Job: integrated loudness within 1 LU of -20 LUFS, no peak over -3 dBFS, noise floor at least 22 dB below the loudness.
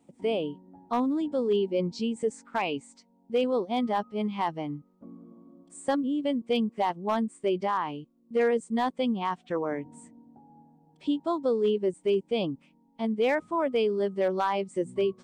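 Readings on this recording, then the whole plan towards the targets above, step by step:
clipped samples 0.2%; clipping level -18.5 dBFS; loudness -29.0 LUFS; peak level -18.5 dBFS; loudness target -20.0 LUFS
-> clip repair -18.5 dBFS; trim +9 dB

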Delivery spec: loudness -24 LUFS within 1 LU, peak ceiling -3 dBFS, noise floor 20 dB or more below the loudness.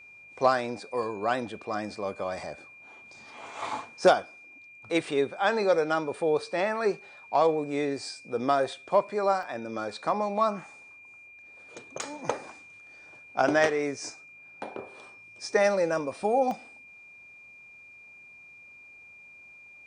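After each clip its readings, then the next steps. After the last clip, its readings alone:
dropouts 4; longest dropout 1.1 ms; steady tone 2.4 kHz; tone level -48 dBFS; loudness -28.0 LUFS; peak level -10.0 dBFS; loudness target -24.0 LUFS
-> interpolate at 1.03/9.43/12.02/16.51 s, 1.1 ms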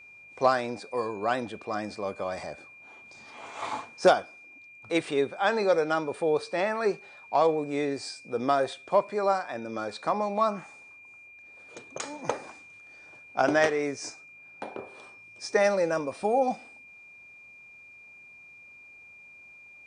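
dropouts 0; steady tone 2.4 kHz; tone level -48 dBFS
-> band-stop 2.4 kHz, Q 30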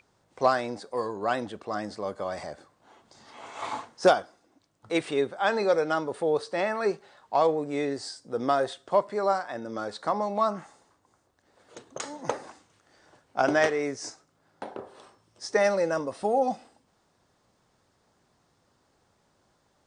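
steady tone not found; loudness -28.0 LUFS; peak level -9.5 dBFS; loudness target -24.0 LUFS
-> trim +4 dB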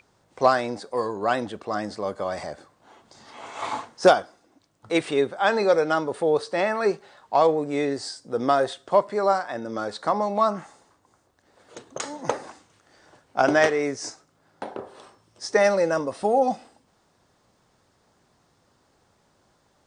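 loudness -24.0 LUFS; peak level -5.5 dBFS; noise floor -66 dBFS

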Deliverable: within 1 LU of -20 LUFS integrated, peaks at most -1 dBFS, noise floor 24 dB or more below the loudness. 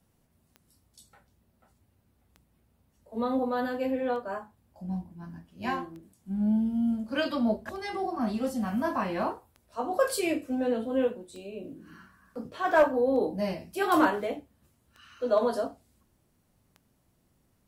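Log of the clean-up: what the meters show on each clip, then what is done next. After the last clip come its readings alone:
clicks found 10; loudness -29.0 LUFS; peak level -12.0 dBFS; loudness target -20.0 LUFS
-> de-click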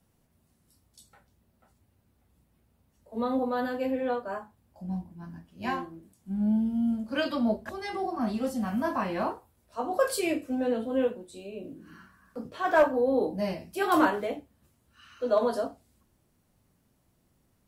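clicks found 0; loudness -29.0 LUFS; peak level -10.5 dBFS; loudness target -20.0 LUFS
-> trim +9 dB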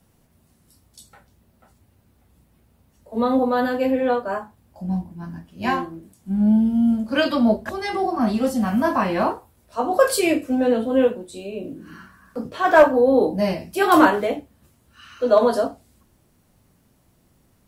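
loudness -20.0 LUFS; peak level -1.5 dBFS; noise floor -61 dBFS

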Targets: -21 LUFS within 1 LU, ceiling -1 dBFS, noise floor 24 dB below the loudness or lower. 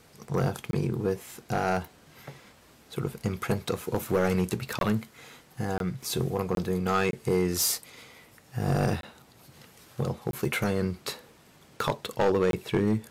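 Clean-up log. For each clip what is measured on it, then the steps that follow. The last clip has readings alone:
clipped samples 0.7%; clipping level -17.5 dBFS; dropouts 8; longest dropout 22 ms; loudness -29.0 LUFS; peak level -17.5 dBFS; loudness target -21.0 LUFS
-> clip repair -17.5 dBFS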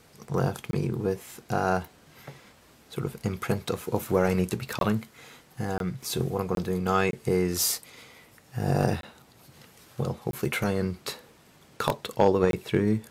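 clipped samples 0.0%; dropouts 8; longest dropout 22 ms
-> interpolate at 0.71/4.79/5.78/6.55/7.11/9.01/10.31/12.51 s, 22 ms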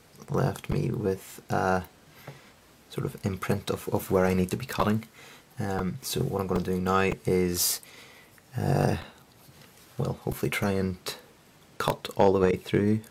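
dropouts 0; loudness -28.0 LUFS; peak level -8.5 dBFS; loudness target -21.0 LUFS
-> trim +7 dB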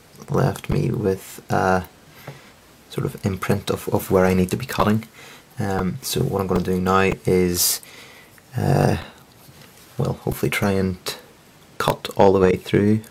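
loudness -21.0 LUFS; peak level -1.5 dBFS; noise floor -50 dBFS

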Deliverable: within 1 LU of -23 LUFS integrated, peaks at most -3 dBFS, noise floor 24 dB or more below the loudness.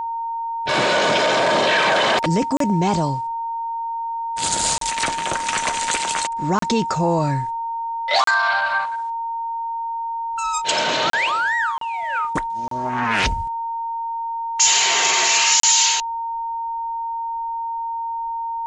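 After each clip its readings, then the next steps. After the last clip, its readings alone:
dropouts 8; longest dropout 33 ms; steady tone 920 Hz; tone level -23 dBFS; loudness -20.0 LUFS; peak level -5.0 dBFS; loudness target -23.0 LUFS
-> interpolate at 2.57/4.78/6.59/8.24/11.10/11.78/12.68/15.60 s, 33 ms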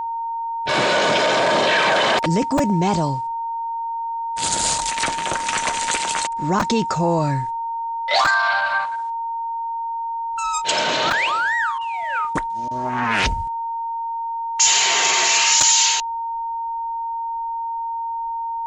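dropouts 0; steady tone 920 Hz; tone level -23 dBFS
-> band-stop 920 Hz, Q 30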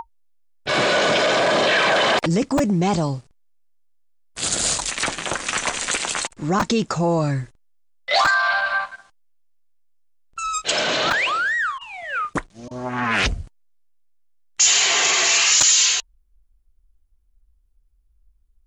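steady tone not found; loudness -19.0 LUFS; peak level -2.5 dBFS; loudness target -23.0 LUFS
-> trim -4 dB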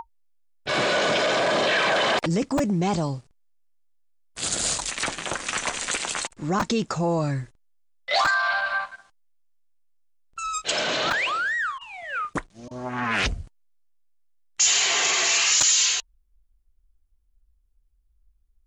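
loudness -23.0 LUFS; peak level -6.5 dBFS; noise floor -65 dBFS

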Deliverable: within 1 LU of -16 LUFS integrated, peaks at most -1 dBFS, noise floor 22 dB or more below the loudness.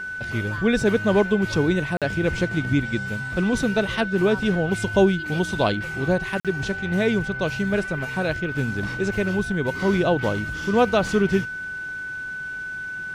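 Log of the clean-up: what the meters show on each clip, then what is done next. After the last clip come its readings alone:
dropouts 2; longest dropout 47 ms; steady tone 1.5 kHz; tone level -29 dBFS; loudness -23.0 LUFS; peak level -5.5 dBFS; loudness target -16.0 LUFS
-> interpolate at 1.97/6.40 s, 47 ms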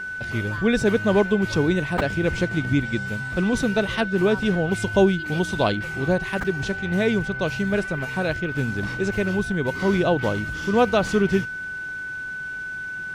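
dropouts 0; steady tone 1.5 kHz; tone level -29 dBFS
-> band-stop 1.5 kHz, Q 30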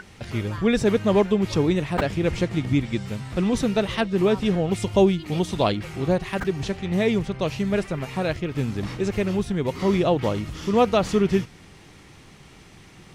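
steady tone not found; loudness -23.5 LUFS; peak level -6.0 dBFS; loudness target -16.0 LUFS
-> trim +7.5 dB; peak limiter -1 dBFS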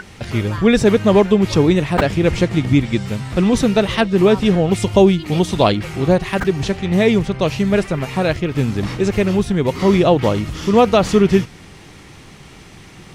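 loudness -16.0 LUFS; peak level -1.0 dBFS; noise floor -41 dBFS

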